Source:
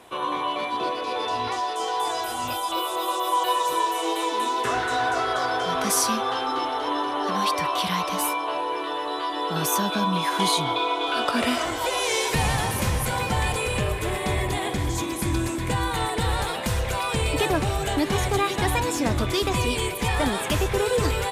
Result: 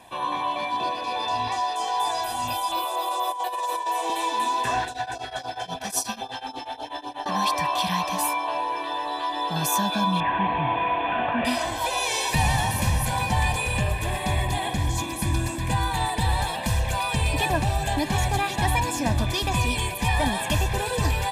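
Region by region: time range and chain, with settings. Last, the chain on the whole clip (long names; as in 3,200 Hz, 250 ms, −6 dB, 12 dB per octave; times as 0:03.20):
0:02.84–0:04.10: high-pass filter 390 Hz 24 dB per octave + compressor whose output falls as the input rises −25 dBFS, ratio −0.5 + tilt shelving filter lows +4 dB, about 670 Hz
0:04.85–0:07.26: parametric band 1,100 Hz −13 dB 0.24 octaves + shaped tremolo triangle 8.2 Hz, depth 95% + auto-filter notch sine 3.7 Hz 240–2,100 Hz
0:10.20–0:11.45: variable-slope delta modulation 16 kbit/s + high-pass filter 61 Hz + envelope flattener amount 50%
whole clip: notch filter 1,400 Hz, Q 6.1; comb filter 1.2 ms, depth 64%; level −1.5 dB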